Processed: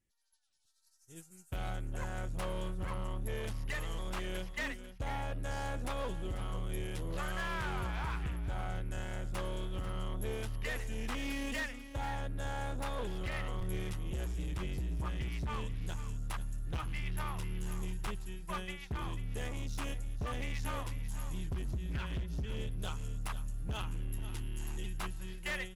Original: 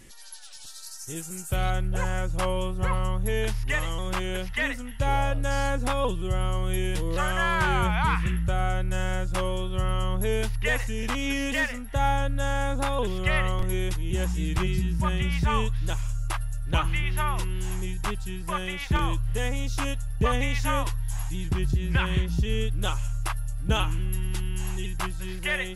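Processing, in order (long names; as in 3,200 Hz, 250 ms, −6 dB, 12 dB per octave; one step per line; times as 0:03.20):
downward expander −23 dBFS
parametric band 77 Hz +5.5 dB 1.6 octaves
downward compressor 6 to 1, threshold −29 dBFS, peak gain reduction 13.5 dB
gain into a clipping stage and back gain 31 dB
on a send: single-tap delay 492 ms −12.5 dB
on the sum: level −2 dB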